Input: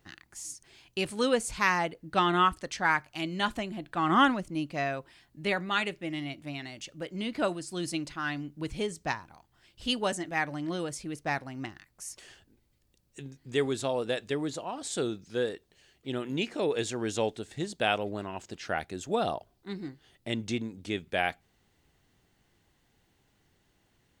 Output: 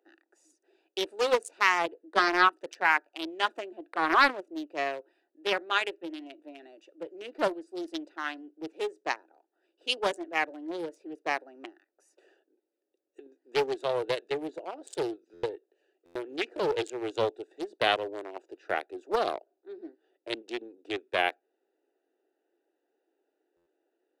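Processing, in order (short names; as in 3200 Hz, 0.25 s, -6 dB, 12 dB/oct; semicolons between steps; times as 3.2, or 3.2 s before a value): Wiener smoothing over 41 samples; steep high-pass 330 Hz 48 dB/oct; stuck buffer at 15.33/16.05/23.56, samples 512, times 8; Doppler distortion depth 0.33 ms; gain +3 dB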